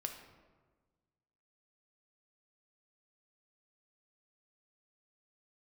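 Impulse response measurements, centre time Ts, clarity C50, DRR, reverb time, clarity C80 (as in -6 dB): 26 ms, 6.5 dB, 4.0 dB, 1.4 s, 9.0 dB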